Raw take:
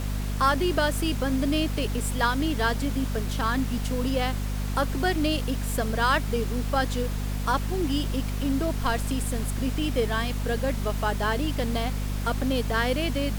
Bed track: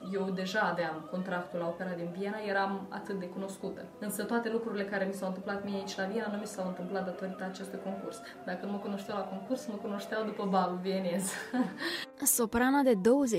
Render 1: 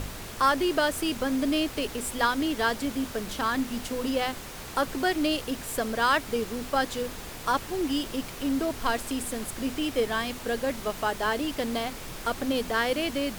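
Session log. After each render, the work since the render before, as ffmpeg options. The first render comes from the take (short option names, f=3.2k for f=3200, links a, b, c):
-af "bandreject=f=50:t=h:w=6,bandreject=f=100:t=h:w=6,bandreject=f=150:t=h:w=6,bandreject=f=200:t=h:w=6,bandreject=f=250:t=h:w=6"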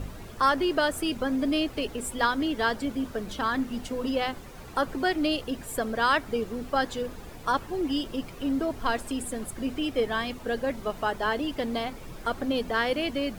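-af "afftdn=nr=11:nf=-40"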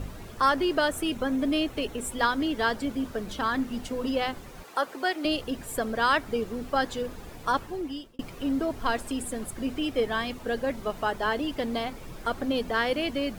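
-filter_complex "[0:a]asettb=1/sr,asplit=3[a][b][c];[a]atrim=end=0.884[d];[b]atrim=start=0.88:end=2.12,asetpts=PTS-STARTPTS,afade=t=in:d=0.004:c=qsin,afade=t=out:st=1.236:d=0.004:c=qsin,bandreject=f=4.8k:w=9.3[e];[c]atrim=start=2.116[f];[d][e]acrossfade=d=0.004:c1=hsin:c2=qsin[g];[g][f]acrossfade=d=0.004:c1=qsin:c2=hsin,asettb=1/sr,asplit=3[h][i][j];[h]atrim=end=4.634[k];[i]atrim=start=4.63:end=5.25,asetpts=PTS-STARTPTS,afade=t=in:d=0.004:c=qsin,afade=t=out:st=0.616:d=0.004:c=qsin,highpass=430[l];[j]atrim=start=5.246[m];[k][l]acrossfade=d=0.004:c1=hsin:c2=qsin[n];[n][m]acrossfade=d=0.004:c1=qsin:c2=hsin,asplit=2[o][p];[o]atrim=end=8.19,asetpts=PTS-STARTPTS,afade=t=out:st=7.57:d=0.62[q];[p]atrim=start=8.19,asetpts=PTS-STARTPTS,afade=t=in:d=0.004:c=hsin[r];[q][r]concat=n=2:v=0:a=1"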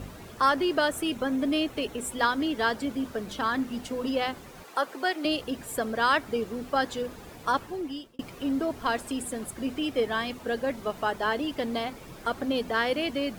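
-af "highpass=f=97:p=1"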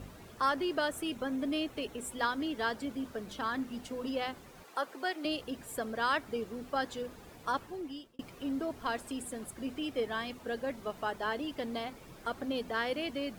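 -af "volume=-7dB"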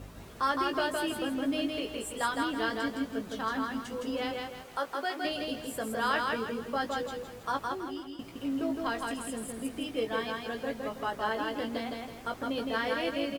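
-filter_complex "[0:a]asplit=2[a][b];[b]adelay=18,volume=-6.5dB[c];[a][c]amix=inputs=2:normalize=0,aecho=1:1:163|326|489|652|815:0.708|0.269|0.102|0.0388|0.0148"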